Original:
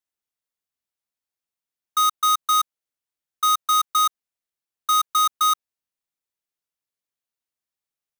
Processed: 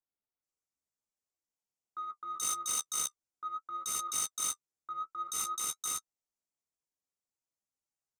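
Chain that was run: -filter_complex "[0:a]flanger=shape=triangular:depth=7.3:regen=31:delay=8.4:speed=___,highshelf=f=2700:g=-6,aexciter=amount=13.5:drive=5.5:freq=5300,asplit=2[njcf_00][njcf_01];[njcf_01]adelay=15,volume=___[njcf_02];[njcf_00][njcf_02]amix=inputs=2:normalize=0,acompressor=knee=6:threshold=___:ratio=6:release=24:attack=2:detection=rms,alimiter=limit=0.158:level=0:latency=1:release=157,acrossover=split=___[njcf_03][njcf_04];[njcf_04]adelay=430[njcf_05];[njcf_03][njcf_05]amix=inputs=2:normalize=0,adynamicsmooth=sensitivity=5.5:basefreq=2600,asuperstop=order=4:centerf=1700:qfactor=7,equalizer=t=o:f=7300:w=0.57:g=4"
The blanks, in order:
0.54, 0.631, 0.112, 1800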